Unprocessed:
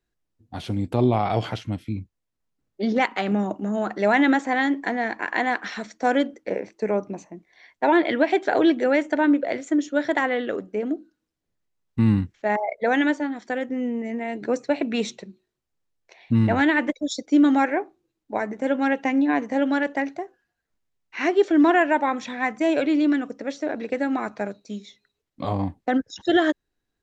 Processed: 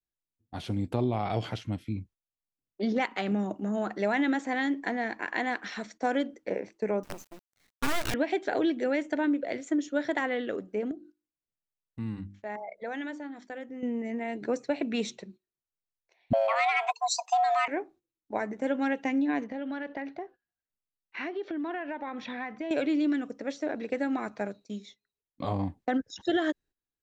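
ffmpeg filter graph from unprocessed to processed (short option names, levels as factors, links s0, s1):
-filter_complex "[0:a]asettb=1/sr,asplit=3[s0][s1][s2];[s0]atrim=end=7.034[s3];[s1]atrim=start=7.03:end=8.14,asetpts=PTS-STARTPTS,afade=t=in:d=0.004:c=qsin,afade=t=out:st=1.106:d=0.004:c=qsin,aemphasis=mode=production:type=50fm,acrusher=bits=5:dc=4:mix=0:aa=0.000001,aeval=exprs='abs(val(0))':c=same[s4];[s2]atrim=start=8.136[s5];[s3][s4]acrossfade=d=0.004:c1=hsin:c2=qsin[s6];[s6][s5]acrossfade=d=0.004:c1=qsin:c2=hsin,asettb=1/sr,asplit=3[s7][s8][s9];[s7]atrim=end=10.914[s10];[s8]atrim=start=10.91:end=13.83,asetpts=PTS-STARTPTS,afade=t=in:d=0.004:c=qsin,afade=t=out:st=2.916:d=0.004:c=qsin,bandreject=f=50:t=h:w=6,bandreject=f=100:t=h:w=6,bandreject=f=150:t=h:w=6,bandreject=f=200:t=h:w=6,bandreject=f=250:t=h:w=6,bandreject=f=300:t=h:w=6,bandreject=f=350:t=h:w=6,acompressor=threshold=0.00501:ratio=1.5:attack=3.2:release=140:knee=1:detection=peak[s11];[s9]atrim=start=13.826[s12];[s10][s11]acrossfade=d=0.004:c1=hsin:c2=qsin[s13];[s13][s12]acrossfade=d=0.004:c1=qsin:c2=hsin,asettb=1/sr,asplit=3[s14][s15][s16];[s14]atrim=end=16.334[s17];[s15]atrim=start=16.33:end=17.68,asetpts=PTS-STARTPTS,afade=t=in:d=0.004:c=qsin,afade=t=out:st=1.346:d=0.004:c=qsin,acontrast=74,afreqshift=440[s18];[s16]atrim=start=17.676[s19];[s17][s18]acrossfade=d=0.004:c1=hsin:c2=qsin[s20];[s20][s19]acrossfade=d=0.004:c1=qsin:c2=hsin,asettb=1/sr,asplit=3[s21][s22][s23];[s21]atrim=end=19.444[s24];[s22]atrim=start=19.44:end=22.71,asetpts=PTS-STARTPTS,afade=t=in:d=0.004:c=qsin,afade=t=out:st=3.266:d=0.004:c=qsin,lowpass=f=4500:w=0.5412,lowpass=f=4500:w=1.3066,acompressor=threshold=0.0447:ratio=6:attack=3.2:release=140:knee=1:detection=peak[s25];[s23]atrim=start=22.706[s26];[s24][s25]acrossfade=d=0.004:c1=hsin:c2=qsin[s27];[s27][s26]acrossfade=d=0.004:c1=qsin:c2=hsin,agate=range=0.224:threshold=0.00501:ratio=16:detection=peak,adynamicequalizer=threshold=0.0224:dfrequency=1000:dqfactor=0.79:tfrequency=1000:tqfactor=0.79:attack=5:release=100:ratio=0.375:range=3:mode=cutabove:tftype=bell,acompressor=threshold=0.126:ratio=6,volume=0.596"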